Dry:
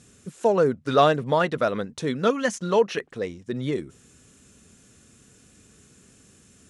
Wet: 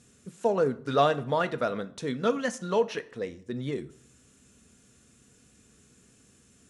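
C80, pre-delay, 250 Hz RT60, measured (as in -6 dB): 21.5 dB, 4 ms, 0.55 s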